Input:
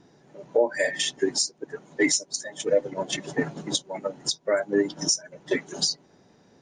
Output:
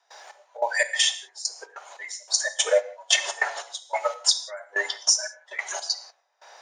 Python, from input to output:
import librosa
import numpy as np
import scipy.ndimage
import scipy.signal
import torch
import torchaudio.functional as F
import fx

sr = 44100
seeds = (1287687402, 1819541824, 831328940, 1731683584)

y = scipy.signal.sosfilt(scipy.signal.butter(6, 650.0, 'highpass', fs=sr, output='sos'), x)
y = fx.rider(y, sr, range_db=10, speed_s=0.5)
y = fx.step_gate(y, sr, bpm=145, pattern='.xx...xx', floor_db=-24.0, edge_ms=4.5)
y = fx.rev_gated(y, sr, seeds[0], gate_ms=200, shape='falling', drr_db=9.5)
y = fx.band_squash(y, sr, depth_pct=40)
y = y * 10.0 ** (8.0 / 20.0)